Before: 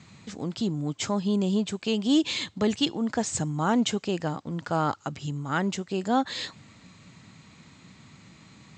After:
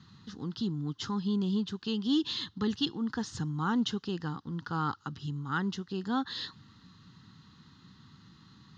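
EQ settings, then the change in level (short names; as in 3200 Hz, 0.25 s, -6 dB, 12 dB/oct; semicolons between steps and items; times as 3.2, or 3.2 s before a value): fixed phaser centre 2300 Hz, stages 6; -3.0 dB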